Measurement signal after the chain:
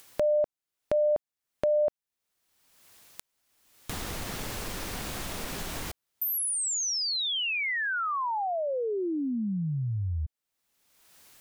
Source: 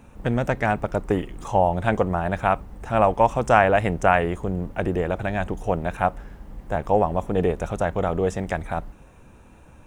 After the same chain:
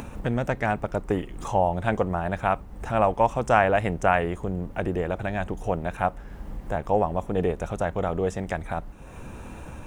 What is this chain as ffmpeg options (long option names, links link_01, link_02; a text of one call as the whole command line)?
ffmpeg -i in.wav -af "acompressor=mode=upward:threshold=-23dB:ratio=2.5,volume=-3dB" out.wav